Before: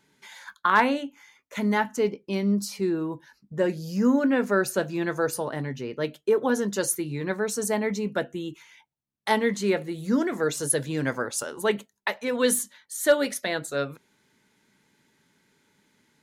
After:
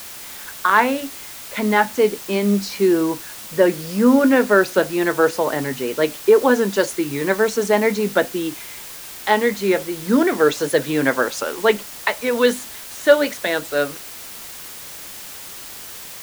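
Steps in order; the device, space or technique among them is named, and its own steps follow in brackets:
dictaphone (band-pass filter 250–4,200 Hz; automatic gain control gain up to 11.5 dB; tape wow and flutter; white noise bed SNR 16 dB)

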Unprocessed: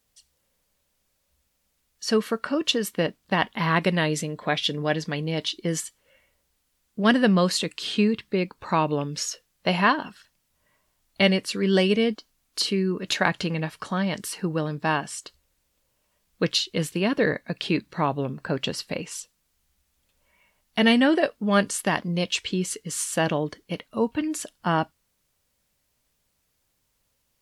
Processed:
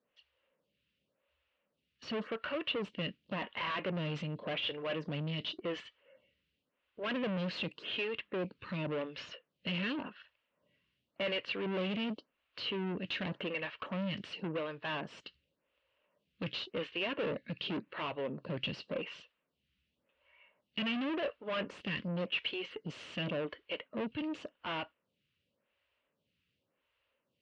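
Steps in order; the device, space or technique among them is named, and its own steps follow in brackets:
vibe pedal into a guitar amplifier (phaser with staggered stages 0.9 Hz; tube saturation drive 34 dB, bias 0.45; loudspeaker in its box 99–3,500 Hz, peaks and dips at 550 Hz +5 dB, 780 Hz −6 dB, 2,800 Hz +8 dB)

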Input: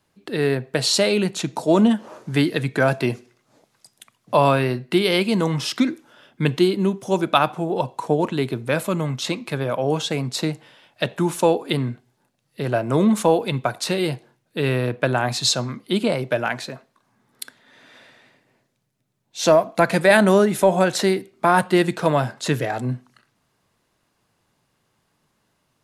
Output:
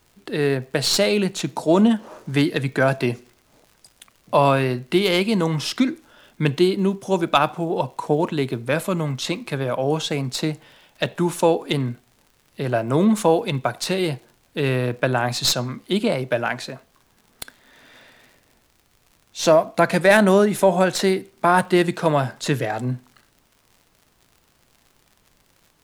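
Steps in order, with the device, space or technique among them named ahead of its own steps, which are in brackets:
record under a worn stylus (stylus tracing distortion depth 0.023 ms; surface crackle 77 per second −40 dBFS; pink noise bed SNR 41 dB)

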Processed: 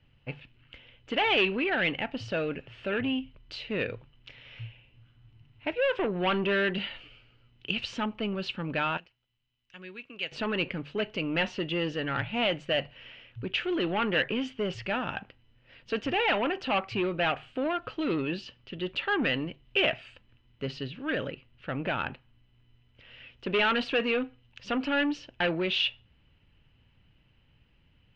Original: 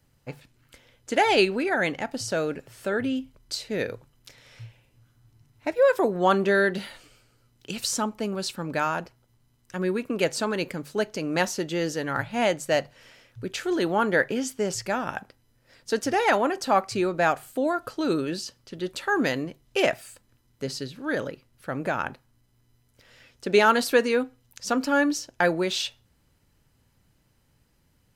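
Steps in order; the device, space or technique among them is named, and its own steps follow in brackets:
0:08.97–0:10.32: first-order pre-emphasis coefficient 0.9
low-shelf EQ 170 Hz +7 dB
overdriven synthesiser ladder filter (soft clipping −20.5 dBFS, distortion −10 dB; transistor ladder low-pass 3,100 Hz, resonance 70%)
level +8.5 dB

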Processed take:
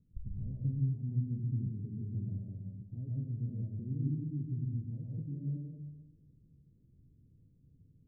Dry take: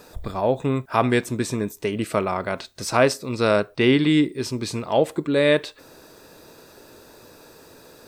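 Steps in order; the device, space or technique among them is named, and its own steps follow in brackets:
0:01.66–0:03.49: Butterworth low-pass 810 Hz 72 dB per octave
club heard from the street (brickwall limiter −13 dBFS, peak gain reduction 8 dB; low-pass filter 170 Hz 24 dB per octave; convolution reverb RT60 1.1 s, pre-delay 110 ms, DRR −3 dB)
level −8 dB

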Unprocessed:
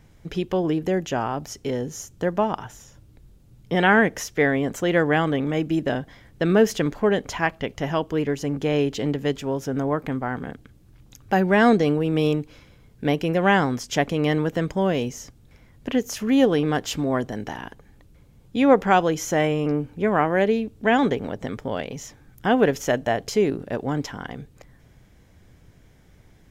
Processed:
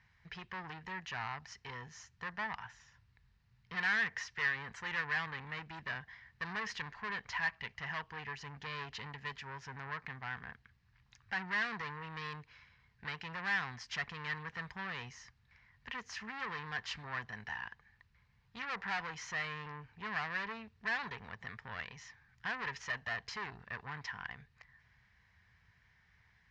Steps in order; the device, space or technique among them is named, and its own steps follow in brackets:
scooped metal amplifier (tube saturation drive 24 dB, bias 0.5; loudspeaker in its box 77–4,400 Hz, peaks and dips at 220 Hz +5 dB, 570 Hz −9 dB, 1,000 Hz +7 dB, 1,800 Hz +10 dB, 3,400 Hz −7 dB; guitar amp tone stack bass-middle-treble 10-0-10)
level −1.5 dB

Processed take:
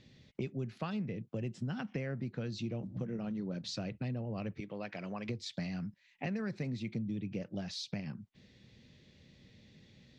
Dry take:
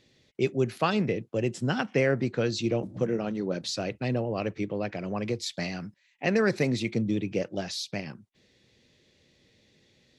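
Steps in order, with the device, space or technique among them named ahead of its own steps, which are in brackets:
0:04.60–0:05.29: high-pass filter 760 Hz 6 dB per octave
jukebox (low-pass filter 5,700 Hz 12 dB per octave; low shelf with overshoot 270 Hz +6.5 dB, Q 1.5; downward compressor 4 to 1, threshold −38 dBFS, peak gain reduction 18 dB)

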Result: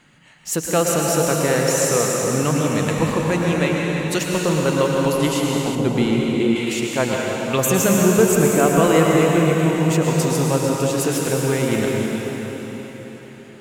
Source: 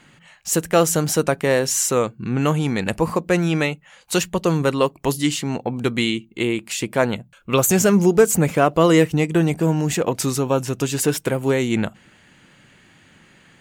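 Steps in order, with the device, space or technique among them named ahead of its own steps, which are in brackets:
cathedral (convolution reverb RT60 4.6 s, pre-delay 102 ms, DRR −2.5 dB)
0:05.75–0:06.56: tilt shelving filter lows +6 dB, about 750 Hz
level −3 dB

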